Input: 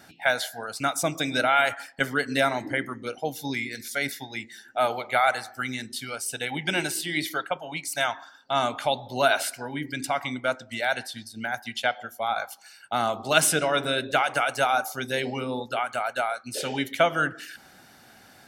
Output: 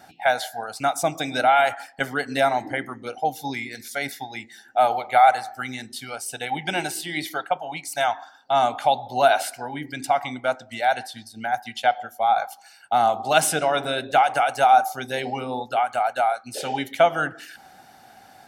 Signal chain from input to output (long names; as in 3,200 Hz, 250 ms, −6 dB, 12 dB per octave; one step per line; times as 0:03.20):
parametric band 770 Hz +12.5 dB 0.41 octaves
level −1 dB